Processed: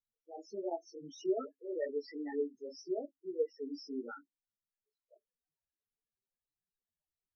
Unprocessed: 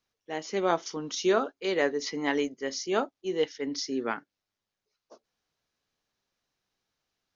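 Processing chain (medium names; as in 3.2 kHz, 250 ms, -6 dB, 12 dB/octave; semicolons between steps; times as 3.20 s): loudest bins only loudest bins 4; chorus voices 4, 1.3 Hz, delay 15 ms, depth 3.4 ms; trim -5 dB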